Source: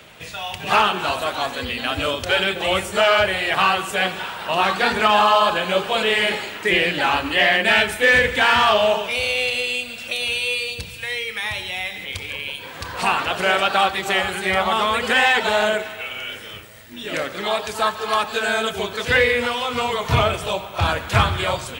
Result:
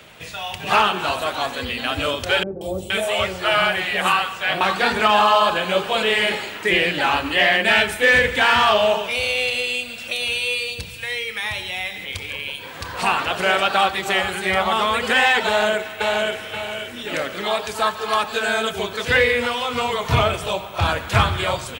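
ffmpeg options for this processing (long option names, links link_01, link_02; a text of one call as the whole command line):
ffmpeg -i in.wav -filter_complex "[0:a]asettb=1/sr,asplit=3[link_01][link_02][link_03];[link_01]atrim=end=2.434[link_04];[link_02]atrim=start=2.43:end=4.61,asetpts=PTS-STARTPTS,afade=type=in:duration=0.004:curve=qsin,afade=type=out:start_time=2.176:duration=0.004:curve=qsin,acrossover=split=620|5500[link_05][link_06][link_07];[link_07]adelay=180[link_08];[link_06]adelay=470[link_09];[link_05][link_09][link_08]amix=inputs=3:normalize=0,atrim=end_sample=96138[link_10];[link_03]atrim=start=4.606[link_11];[link_04][link_10]acrossfade=duration=0.004:curve1=hsin:curve2=qsin[link_12];[link_12][link_11]acrossfade=duration=0.004:curve1=qsin:curve2=hsin,asplit=2[link_13][link_14];[link_14]afade=type=in:start_time=15.47:duration=0.01,afade=type=out:start_time=16.49:duration=0.01,aecho=0:1:530|1060|1590|2120|2650:0.749894|0.262463|0.091862|0.0321517|0.0112531[link_15];[link_13][link_15]amix=inputs=2:normalize=0" out.wav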